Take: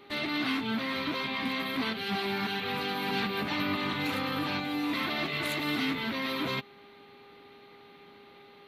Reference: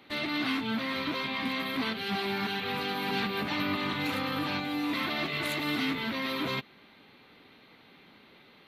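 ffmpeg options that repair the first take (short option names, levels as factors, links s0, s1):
-af "bandreject=f=404.2:t=h:w=4,bandreject=f=808.4:t=h:w=4,bandreject=f=1212.6:t=h:w=4"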